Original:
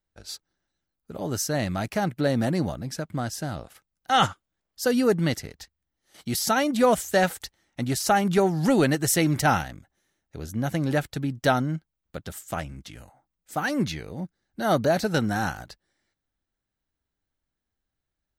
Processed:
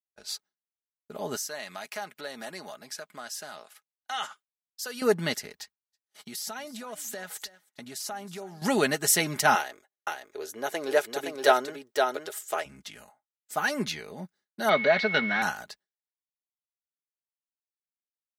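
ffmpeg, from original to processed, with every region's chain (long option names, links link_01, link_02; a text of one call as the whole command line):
ffmpeg -i in.wav -filter_complex "[0:a]asettb=1/sr,asplit=3[link_01][link_02][link_03];[link_01]atrim=end=1.364[link_04];[link_02]atrim=start=1.36:end=5.02,asetpts=PTS-STARTPTS,afade=type=in:duration=0.004:curve=qsin,afade=type=out:start_time=3.656:duration=0.004:curve=qsin,highpass=frequency=830:poles=1,acompressor=threshold=-37dB:ratio=2:attack=3.2:release=140:knee=1:detection=peak[link_05];[link_03]atrim=start=5.016[link_06];[link_04][link_05]acrossfade=duration=0.004:curve1=hsin:curve2=qsin[link_07];[link_07][link_06]acrossfade=duration=0.004:curve1=qsin:curve2=hsin,asettb=1/sr,asplit=3[link_08][link_09][link_10];[link_08]atrim=end=5.604[link_11];[link_09]atrim=start=5.6:end=8.62,asetpts=PTS-STARTPTS,afade=type=in:duration=0.004:curve=qsin,afade=type=out:start_time=3.016:duration=0.004:curve=qsin,acompressor=threshold=-33dB:ratio=16:attack=3.2:release=140:knee=1:detection=peak,aecho=1:1:319:0.133,atrim=end_sample=133182[link_12];[link_10]atrim=start=8.616[link_13];[link_11][link_12]acrossfade=duration=0.004:curve1=hsin:curve2=qsin[link_14];[link_14][link_13]acrossfade=duration=0.004:curve1=qsin:curve2=hsin,asettb=1/sr,asplit=3[link_15][link_16][link_17];[link_15]atrim=end=9.554[link_18];[link_16]atrim=start=9.55:end=12.66,asetpts=PTS-STARTPTS,afade=type=in:duration=0.004:curve=qsin,afade=type=out:start_time=3.106:duration=0.004:curve=qsin,lowshelf=frequency=270:width_type=q:width=3:gain=-12.5,aecho=1:1:517:0.596,atrim=end_sample=137151[link_19];[link_17]atrim=start=12.656[link_20];[link_18][link_19]acrossfade=duration=0.004:curve1=hsin:curve2=qsin[link_21];[link_21][link_20]acrossfade=duration=0.004:curve1=qsin:curve2=hsin,asettb=1/sr,asplit=3[link_22][link_23][link_24];[link_22]atrim=end=14.694[link_25];[link_23]atrim=start=14.69:end=15.42,asetpts=PTS-STARTPTS,afade=type=in:duration=0.004:curve=qsin,afade=type=out:start_time=0.726:duration=0.004:curve=qsin,aeval=exprs='val(0)+0.5*0.0178*sgn(val(0))':channel_layout=same,aeval=exprs='val(0)+0.0316*sin(2*PI*2200*n/s)':channel_layout=same,highpass=150,equalizer=frequency=340:width_type=q:width=4:gain=-4,equalizer=frequency=830:width_type=q:width=4:gain=-4,equalizer=frequency=2000:width_type=q:width=4:gain=9,equalizer=frequency=3500:width_type=q:width=4:gain=5,lowpass=frequency=3800:width=0.5412,lowpass=frequency=3800:width=1.3066[link_26];[link_24]atrim=start=15.416[link_27];[link_25][link_26]acrossfade=duration=0.004:curve1=hsin:curve2=qsin[link_28];[link_28][link_27]acrossfade=duration=0.004:curve1=qsin:curve2=hsin,agate=range=-33dB:threshold=-48dB:ratio=3:detection=peak,highpass=frequency=620:poles=1,aecho=1:1:4.8:0.49,volume=1dB" out.wav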